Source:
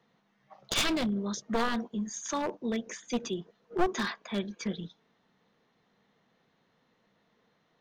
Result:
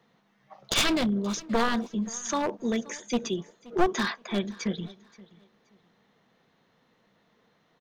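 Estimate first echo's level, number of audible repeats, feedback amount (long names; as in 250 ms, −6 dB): −21.5 dB, 2, 25%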